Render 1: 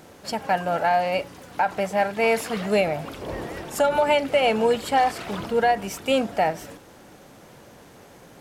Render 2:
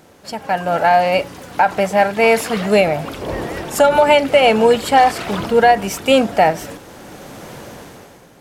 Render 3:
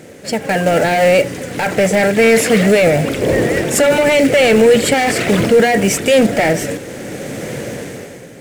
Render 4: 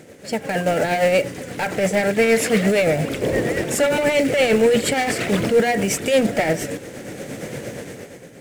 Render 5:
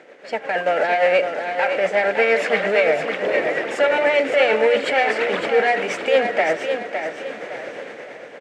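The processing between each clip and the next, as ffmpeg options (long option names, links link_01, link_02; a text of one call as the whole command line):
ffmpeg -i in.wav -af "dynaudnorm=framelen=100:gausssize=13:maxgain=14dB" out.wav
ffmpeg -i in.wav -af "apsyclip=16dB,acrusher=bits=4:mode=log:mix=0:aa=0.000001,equalizer=frequency=125:width_type=o:width=1:gain=9,equalizer=frequency=250:width_type=o:width=1:gain=6,equalizer=frequency=500:width_type=o:width=1:gain=11,equalizer=frequency=1000:width_type=o:width=1:gain=-8,equalizer=frequency=2000:width_type=o:width=1:gain=11,equalizer=frequency=8000:width_type=o:width=1:gain=9,volume=-14.5dB" out.wav
ffmpeg -i in.wav -af "tremolo=f=8.6:d=0.42,volume=-4.5dB" out.wav
ffmpeg -i in.wav -af "highpass=590,lowpass=2500,aecho=1:1:560|1120|1680|2240:0.447|0.156|0.0547|0.0192,volume=4dB" out.wav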